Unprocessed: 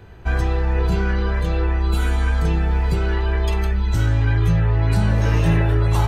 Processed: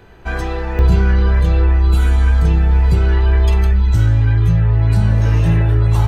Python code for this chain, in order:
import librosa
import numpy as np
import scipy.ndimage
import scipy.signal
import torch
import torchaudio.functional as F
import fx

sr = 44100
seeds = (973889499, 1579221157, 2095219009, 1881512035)

y = fx.peak_eq(x, sr, hz=87.0, db=fx.steps((0.0, -8.5), (0.79, 8.0)), octaves=1.7)
y = fx.rider(y, sr, range_db=3, speed_s=0.5)